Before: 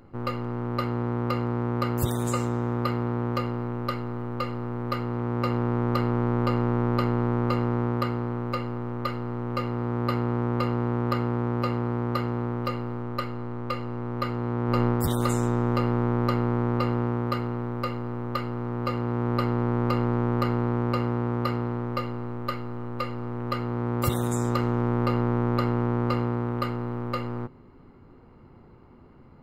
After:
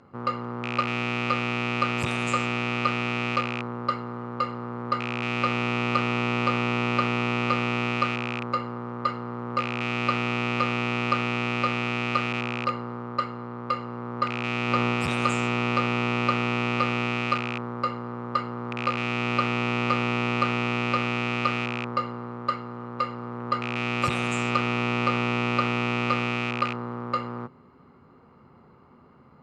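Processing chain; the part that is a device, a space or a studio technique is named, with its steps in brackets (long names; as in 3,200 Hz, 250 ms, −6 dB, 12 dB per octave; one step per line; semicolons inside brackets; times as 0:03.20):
car door speaker with a rattle (loose part that buzzes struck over −26 dBFS, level −18 dBFS; loudspeaker in its box 110–7,600 Hz, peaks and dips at 110 Hz −5 dB, 320 Hz −7 dB, 1,200 Hz +6 dB)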